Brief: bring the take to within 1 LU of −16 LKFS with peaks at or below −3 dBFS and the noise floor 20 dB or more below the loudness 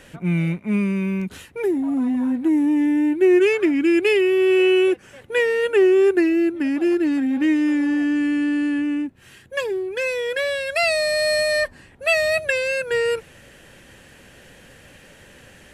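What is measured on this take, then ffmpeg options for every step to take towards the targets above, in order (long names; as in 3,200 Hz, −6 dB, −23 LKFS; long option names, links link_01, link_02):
integrated loudness −20.0 LKFS; sample peak −8.0 dBFS; target loudness −16.0 LKFS
→ -af "volume=4dB"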